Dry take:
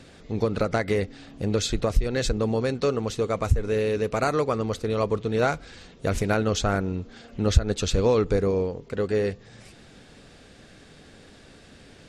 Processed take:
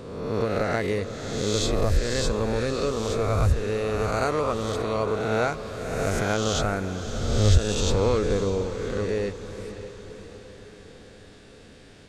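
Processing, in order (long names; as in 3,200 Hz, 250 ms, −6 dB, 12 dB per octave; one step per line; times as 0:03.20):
peak hold with a rise ahead of every peak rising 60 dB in 1.37 s
feedback delay with all-pass diffusion 580 ms, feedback 52%, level −11.5 dB
0:02.28–0:02.76: background noise brown −51 dBFS
level −4 dB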